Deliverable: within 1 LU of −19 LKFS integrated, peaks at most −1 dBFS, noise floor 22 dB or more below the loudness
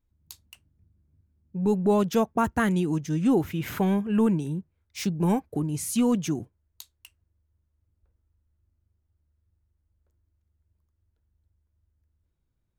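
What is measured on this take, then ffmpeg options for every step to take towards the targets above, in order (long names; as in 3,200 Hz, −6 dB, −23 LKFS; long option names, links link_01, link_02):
integrated loudness −25.5 LKFS; sample peak −13.0 dBFS; target loudness −19.0 LKFS
→ -af "volume=6.5dB"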